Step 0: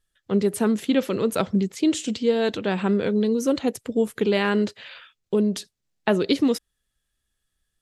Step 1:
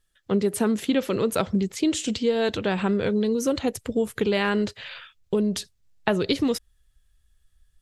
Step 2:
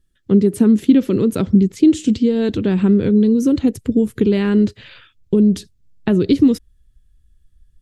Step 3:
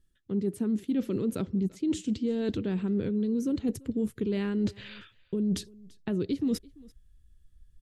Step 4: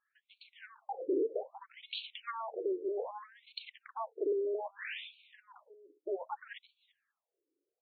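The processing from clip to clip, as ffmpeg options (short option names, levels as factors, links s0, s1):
-af "asubboost=boost=6:cutoff=97,acompressor=threshold=0.0631:ratio=2,volume=1.41"
-af "lowshelf=f=450:t=q:w=1.5:g=12,volume=0.75"
-af "areverse,acompressor=threshold=0.0891:ratio=10,areverse,aecho=1:1:339:0.0631,volume=0.596"
-af "highpass=270,aeval=exprs='0.0944*(cos(1*acos(clip(val(0)/0.0944,-1,1)))-cos(1*PI/2))+0.0376*(cos(3*acos(clip(val(0)/0.0944,-1,1)))-cos(3*PI/2))+0.0335*(cos(5*acos(clip(val(0)/0.0944,-1,1)))-cos(5*PI/2))':c=same,afftfilt=real='re*between(b*sr/1024,390*pow(3200/390,0.5+0.5*sin(2*PI*0.63*pts/sr))/1.41,390*pow(3200/390,0.5+0.5*sin(2*PI*0.63*pts/sr))*1.41)':imag='im*between(b*sr/1024,390*pow(3200/390,0.5+0.5*sin(2*PI*0.63*pts/sr))/1.41,390*pow(3200/390,0.5+0.5*sin(2*PI*0.63*pts/sr))*1.41)':win_size=1024:overlap=0.75,volume=1.68"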